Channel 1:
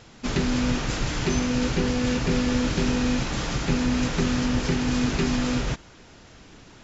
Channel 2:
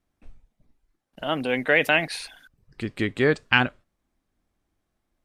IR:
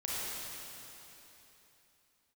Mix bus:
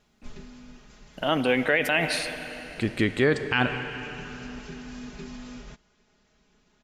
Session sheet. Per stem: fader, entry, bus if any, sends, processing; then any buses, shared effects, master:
−19.5 dB, 0.00 s, no send, comb filter 4.8 ms, depth 88%; automatic ducking −8 dB, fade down 0.65 s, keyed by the second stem
+2.5 dB, 0.00 s, send −16 dB, no processing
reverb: on, RT60 3.4 s, pre-delay 29 ms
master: brickwall limiter −11 dBFS, peak gain reduction 11.5 dB

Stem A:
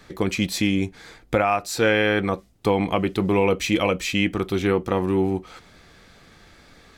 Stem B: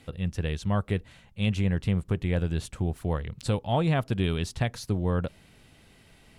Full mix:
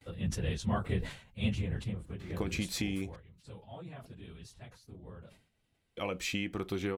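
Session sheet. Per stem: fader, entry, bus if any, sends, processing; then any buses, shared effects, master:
−6.5 dB, 2.20 s, muted 0:03.16–0:05.97, no send, downward compressor 12 to 1, threshold −24 dBFS, peak gain reduction 10 dB
0:01.36 −5 dB → 0:02.07 −14.5 dB → 0:02.91 −14.5 dB → 0:03.18 −22.5 dB, 0.00 s, no send, random phases in long frames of 50 ms; noise gate with hold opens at −52 dBFS; level that may fall only so fast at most 110 dB per second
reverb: not used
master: no processing

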